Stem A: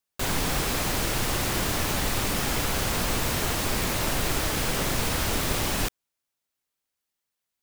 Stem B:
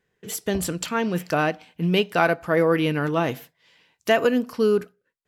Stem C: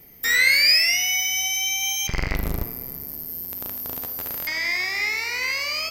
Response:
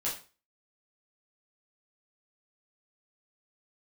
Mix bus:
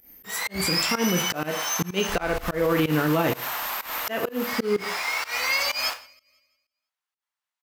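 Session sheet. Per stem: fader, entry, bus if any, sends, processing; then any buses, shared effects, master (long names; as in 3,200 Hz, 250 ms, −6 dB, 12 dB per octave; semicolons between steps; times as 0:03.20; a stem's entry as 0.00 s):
+0.5 dB, 0.05 s, send −7 dB, no echo send, high-pass filter 870 Hz 24 dB per octave; spectral tilt −4 dB per octave
+2.0 dB, 0.00 s, send −7.5 dB, no echo send, no processing
−2.0 dB, 0.00 s, send −14.5 dB, echo send −22.5 dB, high-shelf EQ 10,000 Hz +6.5 dB; comb filter 3.7 ms, depth 92%; automatic ducking −15 dB, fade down 0.25 s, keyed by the second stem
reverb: on, RT60 0.35 s, pre-delay 5 ms
echo: repeating echo 166 ms, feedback 43%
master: volume swells 298 ms; fake sidechain pumping 126 BPM, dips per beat 1, −21 dB, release 168 ms; brickwall limiter −13.5 dBFS, peak gain reduction 7.5 dB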